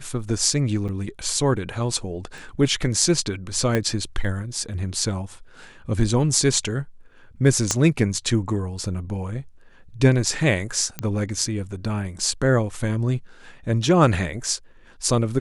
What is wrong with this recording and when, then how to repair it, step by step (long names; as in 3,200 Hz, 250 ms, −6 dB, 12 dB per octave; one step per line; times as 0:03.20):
0:00.88–0:00.89: drop-out 7.2 ms
0:02.38: click
0:03.75: click −9 dBFS
0:07.71: click −6 dBFS
0:10.99: click −11 dBFS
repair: click removal
repair the gap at 0:00.88, 7.2 ms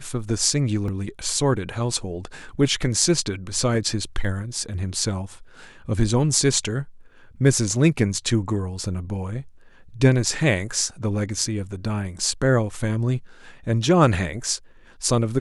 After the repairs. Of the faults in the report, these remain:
0:02.38: click
0:03.75: click
0:07.71: click
0:10.99: click